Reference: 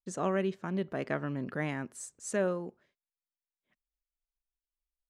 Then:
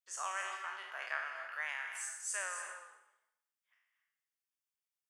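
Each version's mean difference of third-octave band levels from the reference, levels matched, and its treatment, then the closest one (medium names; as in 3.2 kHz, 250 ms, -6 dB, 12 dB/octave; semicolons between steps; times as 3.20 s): 17.0 dB: spectral sustain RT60 0.82 s; high-pass 1 kHz 24 dB/octave; band-stop 4 kHz, Q 6.3; gated-style reverb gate 300 ms rising, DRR 6.5 dB; trim -2 dB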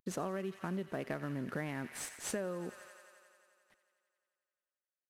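8.0 dB: CVSD coder 64 kbps; peaking EQ 7.5 kHz -6 dB 0.79 oct; feedback echo behind a high-pass 88 ms, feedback 78%, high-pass 1.4 kHz, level -13.5 dB; compression 12:1, threshold -39 dBFS, peak gain reduction 14.5 dB; trim +4.5 dB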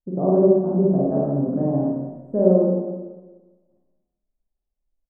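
12.0 dB: inverse Chebyshev low-pass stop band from 2.3 kHz, stop band 60 dB; band-stop 460 Hz, Q 12; early reflections 43 ms -6 dB, 54 ms -5 dB; Schroeder reverb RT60 1.3 s, combs from 29 ms, DRR -2.5 dB; trim +9 dB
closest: second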